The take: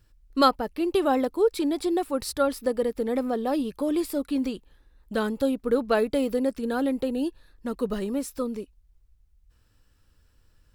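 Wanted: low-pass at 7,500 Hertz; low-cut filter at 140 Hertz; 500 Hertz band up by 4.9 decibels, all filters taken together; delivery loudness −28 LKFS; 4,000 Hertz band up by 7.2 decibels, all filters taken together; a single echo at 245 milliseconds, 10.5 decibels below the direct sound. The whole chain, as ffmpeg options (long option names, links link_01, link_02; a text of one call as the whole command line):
ffmpeg -i in.wav -af "highpass=140,lowpass=7500,equalizer=frequency=500:width_type=o:gain=5.5,equalizer=frequency=4000:width_type=o:gain=8.5,aecho=1:1:245:0.299,volume=-5.5dB" out.wav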